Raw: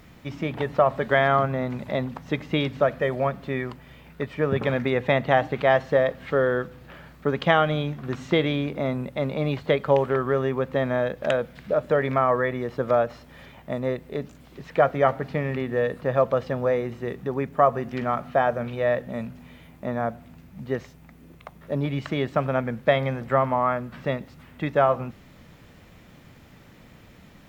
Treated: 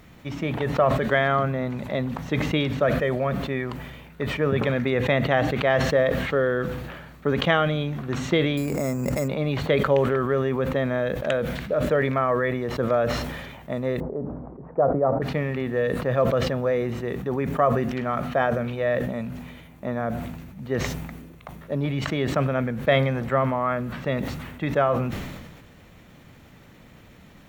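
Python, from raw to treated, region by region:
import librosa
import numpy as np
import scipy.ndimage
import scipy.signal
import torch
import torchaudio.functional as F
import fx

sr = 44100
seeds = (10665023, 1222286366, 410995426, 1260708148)

y = fx.chain(x, sr, fx.resample_bad(factor=6, down='filtered', up='hold'),
    fx.peak_eq(hz=3400.0, db=-7.0, octaves=0.41),
    fx.pre_swell(db_per_s=21.0), at=(8.57, 9.28))
y = fx.chain(y, sr, fx.cheby2_lowpass(hz=4200.0, order=4, stop_db=70),
    fx.low_shelf(hz=180.0, db=-6.5), at=(14.0, 15.22))
y = fx.notch(y, sr, hz=5000.0, q=13.0)
y = fx.dynamic_eq(y, sr, hz=860.0, q=2.2, threshold_db=-35.0, ratio=4.0, max_db=-6)
y = fx.sustainer(y, sr, db_per_s=39.0)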